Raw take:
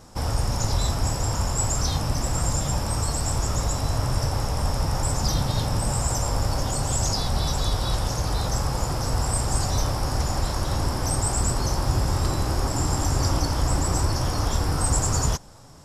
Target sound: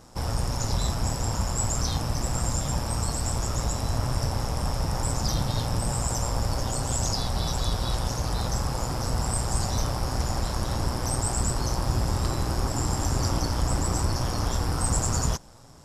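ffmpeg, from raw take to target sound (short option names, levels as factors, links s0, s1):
-af "tremolo=f=120:d=0.519,acontrast=20,volume=0.562"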